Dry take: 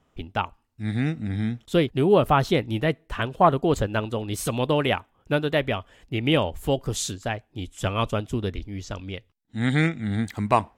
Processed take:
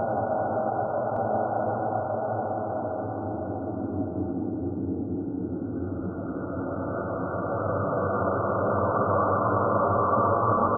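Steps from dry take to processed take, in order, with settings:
high-pass filter 340 Hz 6 dB per octave
in parallel at +0.5 dB: compressor whose output falls as the input rises −33 dBFS, ratio −1
on the sum: extreme stretch with random phases 14×, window 0.50 s, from 0:07.26
linear-phase brick-wall low-pass 1,500 Hz
single-tap delay 1,165 ms −4.5 dB
on a send at −11 dB: convolution reverb RT60 5.0 s, pre-delay 7 ms

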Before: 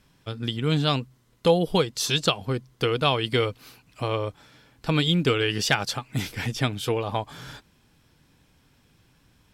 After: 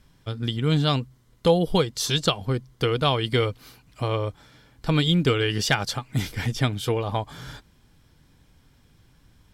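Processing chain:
low-shelf EQ 83 Hz +10.5 dB
notch filter 2,600 Hz, Q 13

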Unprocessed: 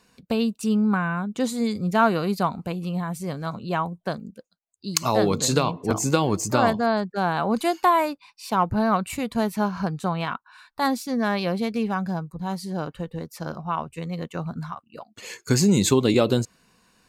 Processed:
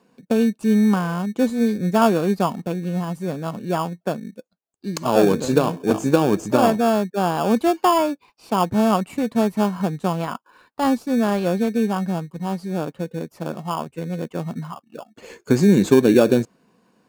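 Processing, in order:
high-pass filter 210 Hz 12 dB per octave
tilt shelving filter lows +8 dB, about 1,400 Hz
in parallel at −7 dB: decimation without filtering 22×
on the sum: level −3 dB

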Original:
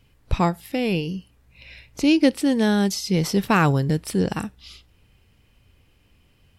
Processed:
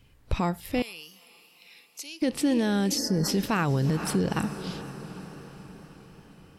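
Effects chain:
feedback delay with all-pass diffusion 460 ms, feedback 57%, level −16 dB
brickwall limiter −16 dBFS, peak gain reduction 11 dB
0:00.82–0:02.22: first difference
0:02.98–0:03.28: gain on a spectral selection 2,000–4,300 Hz −21 dB
tape wow and flutter 29 cents

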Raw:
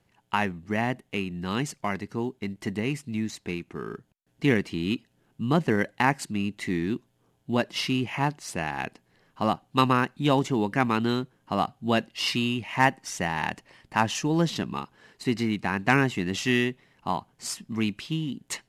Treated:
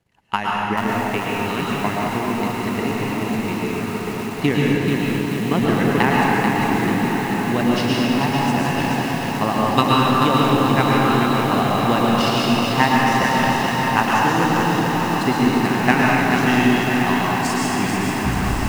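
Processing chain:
turntable brake at the end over 0.97 s
transient designer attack +9 dB, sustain −9 dB
on a send: feedback delay with all-pass diffusion 1,132 ms, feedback 74%, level −8 dB
on the sum: dense smooth reverb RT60 2.5 s, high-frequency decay 0.75×, pre-delay 95 ms, DRR −4 dB
feedback echo at a low word length 437 ms, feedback 55%, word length 5 bits, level −4.5 dB
level −3 dB

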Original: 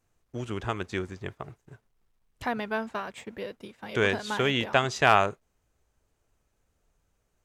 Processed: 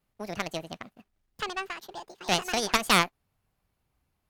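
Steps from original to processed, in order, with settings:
harmonic generator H 4 −7 dB, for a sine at −5 dBFS
wrong playback speed 45 rpm record played at 78 rpm
level −3.5 dB

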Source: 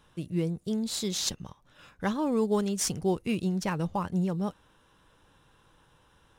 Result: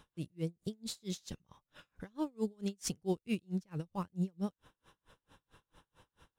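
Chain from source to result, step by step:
dynamic equaliser 910 Hz, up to −6 dB, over −44 dBFS, Q 0.86
in parallel at +0.5 dB: downward compressor, threshold −40 dBFS, peak gain reduction 16 dB
on the sum: tremolo with a sine in dB 4.5 Hz, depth 37 dB
level −4 dB

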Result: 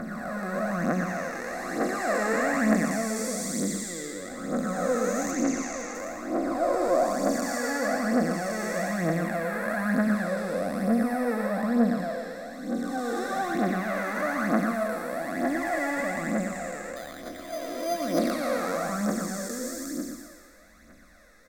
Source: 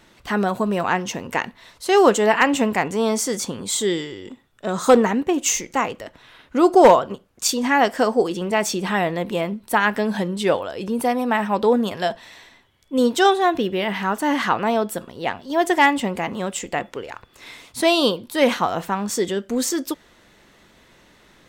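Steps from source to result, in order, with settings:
spectrum smeared in time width 709 ms
0:05.31–0:05.95: low-pass filter 6,500 Hz 12 dB per octave
phase shifter 1.1 Hz, delay 2.5 ms, feedback 63%
phaser with its sweep stopped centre 610 Hz, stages 8
0:16.96–0:18.19: bad sample-rate conversion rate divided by 8×, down filtered, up hold
single-tap delay 117 ms −7.5 dB

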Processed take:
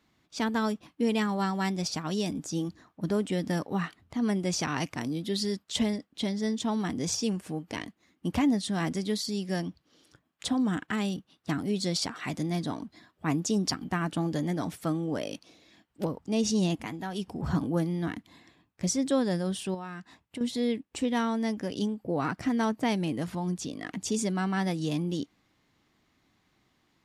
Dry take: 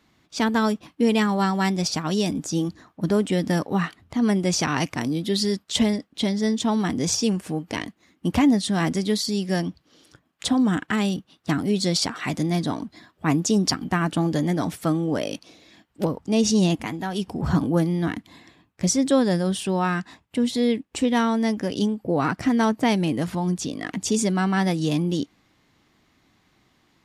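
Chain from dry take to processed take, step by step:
0:19.74–0:20.41: downward compressor 6 to 1, threshold −29 dBFS, peak gain reduction 10.5 dB
level −7 dB

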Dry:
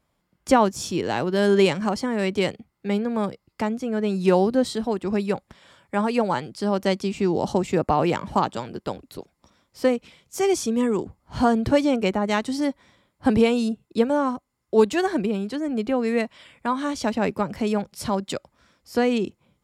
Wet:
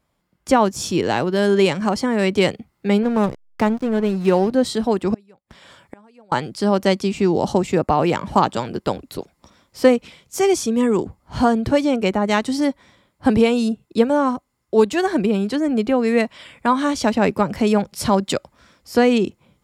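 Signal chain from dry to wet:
0:03.03–0:04.52: slack as between gear wheels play −30.5 dBFS
speech leveller within 3 dB 0.5 s
0:05.14–0:06.32: gate with flip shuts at −25 dBFS, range −32 dB
level +4.5 dB

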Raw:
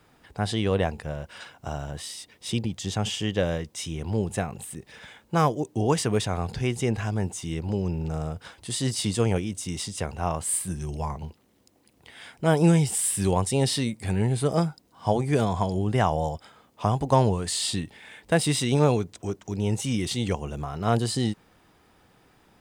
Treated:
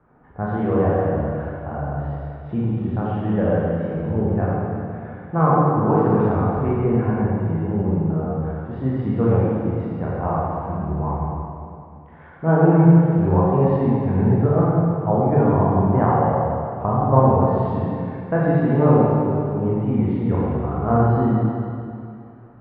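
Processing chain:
low-pass filter 1,400 Hz 24 dB per octave
convolution reverb RT60 2.5 s, pre-delay 27 ms, DRR −7.5 dB

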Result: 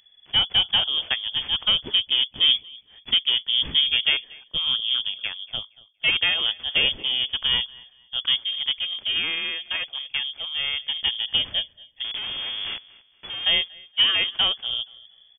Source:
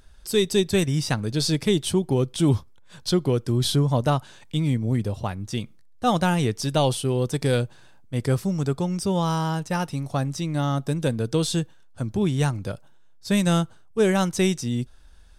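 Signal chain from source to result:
0:12.04–0:13.45: sign of each sample alone
repeating echo 235 ms, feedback 28%, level −17 dB
harmonic generator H 4 −26 dB, 6 −24 dB, 7 −22 dB, 8 −23 dB, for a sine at −8 dBFS
voice inversion scrambler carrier 3,400 Hz

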